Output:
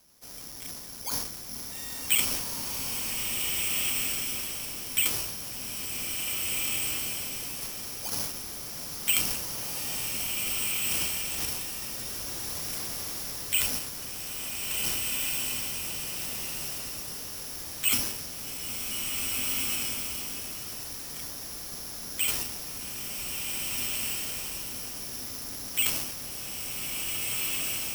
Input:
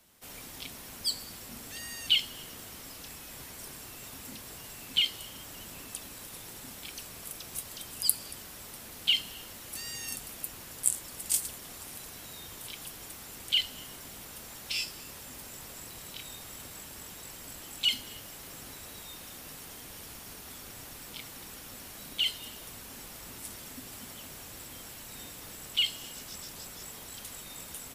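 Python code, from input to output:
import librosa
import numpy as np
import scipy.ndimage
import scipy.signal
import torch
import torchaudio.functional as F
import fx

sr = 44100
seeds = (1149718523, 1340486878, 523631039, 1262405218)

y = fx.high_shelf(x, sr, hz=3000.0, db=-9.5)
y = fx.transient(y, sr, attack_db=0, sustain_db=12)
y = fx.air_absorb(y, sr, metres=160.0)
y = (np.kron(y[::8], np.eye(8)[0]) * 8)[:len(y)]
y = fx.rev_bloom(y, sr, seeds[0], attack_ms=1800, drr_db=-2.0)
y = y * 10.0 ** (-1.0 / 20.0)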